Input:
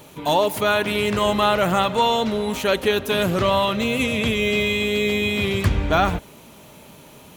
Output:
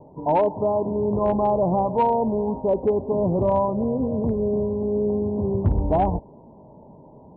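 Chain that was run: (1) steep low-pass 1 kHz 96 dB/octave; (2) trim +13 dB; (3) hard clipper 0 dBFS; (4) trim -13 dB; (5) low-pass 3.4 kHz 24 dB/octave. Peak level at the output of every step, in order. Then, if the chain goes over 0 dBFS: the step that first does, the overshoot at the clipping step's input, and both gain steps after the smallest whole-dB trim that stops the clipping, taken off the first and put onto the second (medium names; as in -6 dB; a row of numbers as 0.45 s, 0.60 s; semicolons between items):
-9.5 dBFS, +3.5 dBFS, 0.0 dBFS, -13.0 dBFS, -12.5 dBFS; step 2, 3.5 dB; step 2 +9 dB, step 4 -9 dB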